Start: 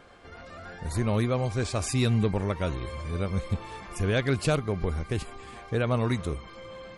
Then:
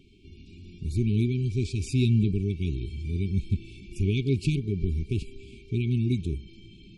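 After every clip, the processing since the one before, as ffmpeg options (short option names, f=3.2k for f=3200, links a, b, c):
-af "aemphasis=mode=reproduction:type=75kf,afftfilt=real='re*(1-between(b*sr/4096,430,2200))':imag='im*(1-between(b*sr/4096,430,2200))':win_size=4096:overlap=0.75,equalizer=f=800:t=o:w=1.3:g=-10.5,volume=3dB"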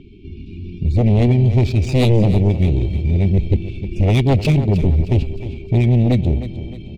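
-af "adynamicsmooth=sensitivity=7.5:basefreq=2.1k,aeval=exprs='0.237*sin(PI/2*2.51*val(0)/0.237)':c=same,aecho=1:1:309|618|927|1236:0.224|0.094|0.0395|0.0166,volume=3dB"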